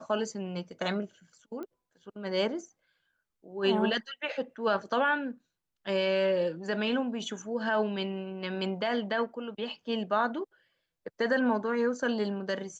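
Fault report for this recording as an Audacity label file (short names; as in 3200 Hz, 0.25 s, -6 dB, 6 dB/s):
1.630000	1.630000	pop -29 dBFS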